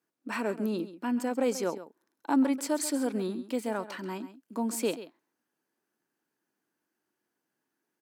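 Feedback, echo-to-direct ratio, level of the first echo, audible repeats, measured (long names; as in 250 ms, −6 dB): repeats not evenly spaced, −14.0 dB, −14.0 dB, 1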